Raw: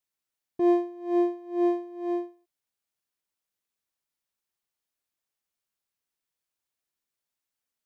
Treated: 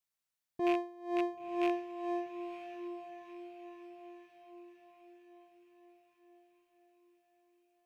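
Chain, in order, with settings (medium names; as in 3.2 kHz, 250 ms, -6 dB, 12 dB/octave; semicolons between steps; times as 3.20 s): rattle on loud lows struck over -34 dBFS, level -26 dBFS; peaking EQ 350 Hz -7.5 dB 0.92 oct; echo that smears into a reverb 960 ms, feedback 51%, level -10 dB; trim -2.5 dB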